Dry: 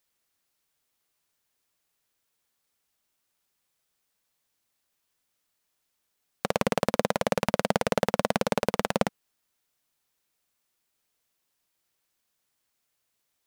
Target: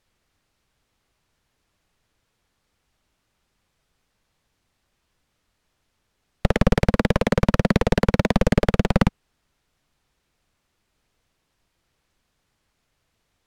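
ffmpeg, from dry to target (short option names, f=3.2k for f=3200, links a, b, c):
-af "aeval=exprs='(mod(3.98*val(0)+1,2)-1)/3.98':c=same,apsyclip=21dB,aemphasis=mode=reproduction:type=bsi,volume=-11dB"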